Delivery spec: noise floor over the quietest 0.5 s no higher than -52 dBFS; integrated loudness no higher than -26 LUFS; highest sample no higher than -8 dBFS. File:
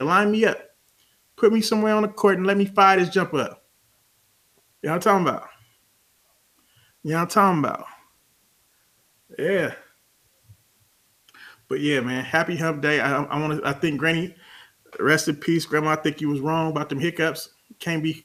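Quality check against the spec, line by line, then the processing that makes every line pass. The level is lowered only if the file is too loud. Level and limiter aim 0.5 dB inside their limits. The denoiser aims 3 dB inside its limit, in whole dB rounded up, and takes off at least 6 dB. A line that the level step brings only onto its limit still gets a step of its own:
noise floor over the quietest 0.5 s -63 dBFS: pass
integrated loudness -22.0 LUFS: fail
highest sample -2.5 dBFS: fail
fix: trim -4.5 dB; peak limiter -8.5 dBFS

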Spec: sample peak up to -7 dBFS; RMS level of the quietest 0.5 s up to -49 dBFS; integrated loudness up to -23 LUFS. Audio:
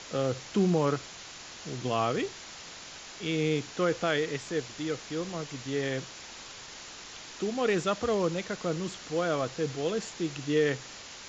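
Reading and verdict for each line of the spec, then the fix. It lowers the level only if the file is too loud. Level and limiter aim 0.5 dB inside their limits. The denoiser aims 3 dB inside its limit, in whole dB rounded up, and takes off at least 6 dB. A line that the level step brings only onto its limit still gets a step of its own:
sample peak -14.5 dBFS: pass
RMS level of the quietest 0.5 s -45 dBFS: fail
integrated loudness -30.5 LUFS: pass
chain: noise reduction 7 dB, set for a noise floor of -45 dBFS

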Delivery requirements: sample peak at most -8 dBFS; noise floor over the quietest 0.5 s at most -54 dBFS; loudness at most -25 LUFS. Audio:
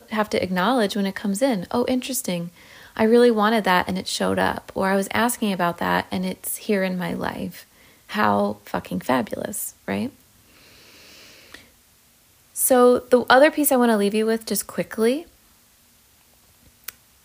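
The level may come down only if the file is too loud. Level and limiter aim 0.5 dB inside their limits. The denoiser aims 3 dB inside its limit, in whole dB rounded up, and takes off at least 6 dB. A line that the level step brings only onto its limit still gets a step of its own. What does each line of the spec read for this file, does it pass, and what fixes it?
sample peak -3.0 dBFS: fail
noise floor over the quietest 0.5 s -57 dBFS: pass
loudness -21.0 LUFS: fail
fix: trim -4.5 dB; peak limiter -8.5 dBFS

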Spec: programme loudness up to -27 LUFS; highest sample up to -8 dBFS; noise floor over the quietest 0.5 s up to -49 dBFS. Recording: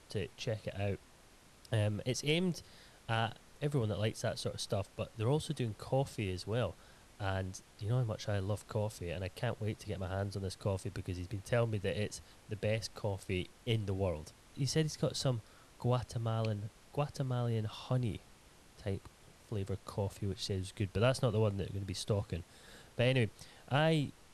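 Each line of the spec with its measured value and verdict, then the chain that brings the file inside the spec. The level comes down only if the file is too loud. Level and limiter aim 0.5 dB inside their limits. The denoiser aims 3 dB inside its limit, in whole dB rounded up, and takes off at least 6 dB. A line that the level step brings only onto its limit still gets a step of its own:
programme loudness -37.0 LUFS: pass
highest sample -17.5 dBFS: pass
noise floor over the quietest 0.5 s -61 dBFS: pass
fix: none needed

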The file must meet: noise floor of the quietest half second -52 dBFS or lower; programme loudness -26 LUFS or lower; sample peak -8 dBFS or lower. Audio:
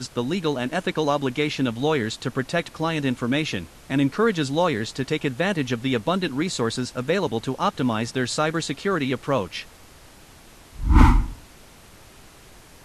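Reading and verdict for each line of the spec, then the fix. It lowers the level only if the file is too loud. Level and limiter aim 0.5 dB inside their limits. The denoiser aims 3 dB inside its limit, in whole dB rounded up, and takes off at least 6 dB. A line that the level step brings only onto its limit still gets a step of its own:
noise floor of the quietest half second -48 dBFS: fail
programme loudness -24.0 LUFS: fail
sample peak -3.5 dBFS: fail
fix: noise reduction 6 dB, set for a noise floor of -48 dBFS; trim -2.5 dB; peak limiter -8.5 dBFS

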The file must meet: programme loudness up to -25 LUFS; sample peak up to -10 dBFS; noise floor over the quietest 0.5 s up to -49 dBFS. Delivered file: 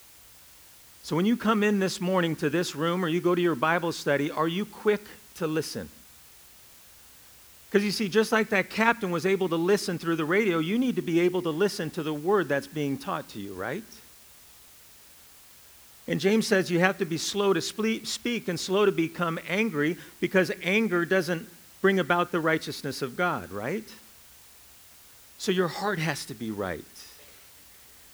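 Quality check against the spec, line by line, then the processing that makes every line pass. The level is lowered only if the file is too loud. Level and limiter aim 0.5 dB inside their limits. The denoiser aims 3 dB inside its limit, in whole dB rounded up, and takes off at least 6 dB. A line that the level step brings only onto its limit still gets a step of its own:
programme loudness -26.5 LUFS: pass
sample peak -5.0 dBFS: fail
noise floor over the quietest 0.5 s -52 dBFS: pass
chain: peak limiter -10.5 dBFS

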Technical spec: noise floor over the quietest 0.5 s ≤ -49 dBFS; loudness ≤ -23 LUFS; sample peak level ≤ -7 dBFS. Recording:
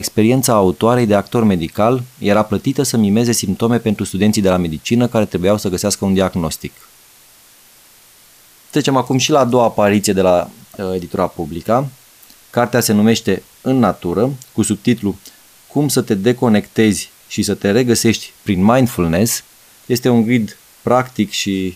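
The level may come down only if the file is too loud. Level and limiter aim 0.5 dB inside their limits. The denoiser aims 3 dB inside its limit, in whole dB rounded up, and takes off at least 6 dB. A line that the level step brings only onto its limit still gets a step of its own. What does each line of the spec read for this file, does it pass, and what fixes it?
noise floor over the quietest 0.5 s -46 dBFS: fail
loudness -15.5 LUFS: fail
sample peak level -1.5 dBFS: fail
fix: trim -8 dB

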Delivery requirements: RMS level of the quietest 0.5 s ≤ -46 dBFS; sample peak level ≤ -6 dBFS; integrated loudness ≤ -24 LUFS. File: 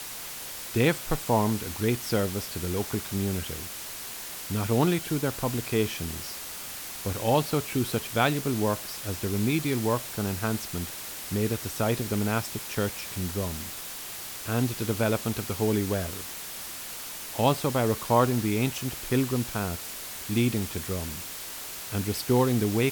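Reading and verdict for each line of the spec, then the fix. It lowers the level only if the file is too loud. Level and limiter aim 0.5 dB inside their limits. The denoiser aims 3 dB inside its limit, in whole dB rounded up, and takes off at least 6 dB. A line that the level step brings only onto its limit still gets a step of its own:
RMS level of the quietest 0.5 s -38 dBFS: fail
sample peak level -8.5 dBFS: pass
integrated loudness -28.5 LUFS: pass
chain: noise reduction 11 dB, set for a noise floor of -38 dBFS

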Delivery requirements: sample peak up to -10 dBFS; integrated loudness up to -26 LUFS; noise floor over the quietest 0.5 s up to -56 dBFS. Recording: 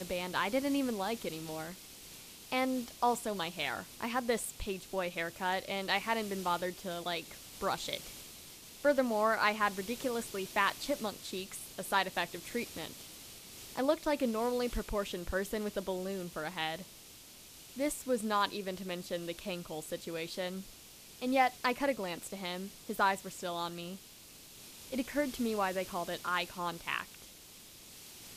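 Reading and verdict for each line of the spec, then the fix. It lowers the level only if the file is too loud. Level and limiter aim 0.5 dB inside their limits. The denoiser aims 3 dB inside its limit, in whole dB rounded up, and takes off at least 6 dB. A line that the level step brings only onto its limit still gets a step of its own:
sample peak -15.0 dBFS: pass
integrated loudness -35.0 LUFS: pass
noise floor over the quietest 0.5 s -54 dBFS: fail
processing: noise reduction 6 dB, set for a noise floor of -54 dBFS

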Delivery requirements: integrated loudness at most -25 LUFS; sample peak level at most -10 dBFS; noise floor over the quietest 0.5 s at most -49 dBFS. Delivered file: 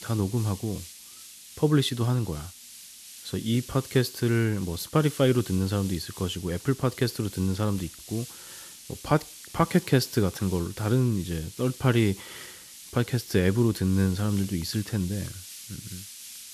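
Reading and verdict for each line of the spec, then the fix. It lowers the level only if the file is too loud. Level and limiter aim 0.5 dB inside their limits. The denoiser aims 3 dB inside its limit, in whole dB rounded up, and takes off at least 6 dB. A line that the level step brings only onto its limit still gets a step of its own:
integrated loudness -27.0 LUFS: pass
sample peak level -8.5 dBFS: fail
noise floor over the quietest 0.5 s -47 dBFS: fail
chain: noise reduction 6 dB, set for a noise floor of -47 dBFS; peak limiter -10.5 dBFS

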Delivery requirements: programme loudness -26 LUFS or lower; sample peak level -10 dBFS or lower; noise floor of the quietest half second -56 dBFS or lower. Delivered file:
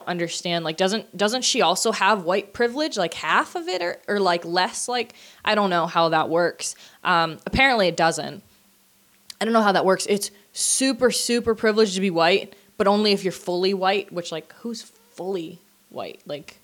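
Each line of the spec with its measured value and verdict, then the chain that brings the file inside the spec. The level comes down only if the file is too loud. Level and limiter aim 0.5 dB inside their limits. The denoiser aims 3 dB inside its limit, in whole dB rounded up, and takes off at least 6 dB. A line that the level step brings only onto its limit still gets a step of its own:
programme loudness -21.5 LUFS: fail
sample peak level -5.5 dBFS: fail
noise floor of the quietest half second -59 dBFS: pass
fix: trim -5 dB

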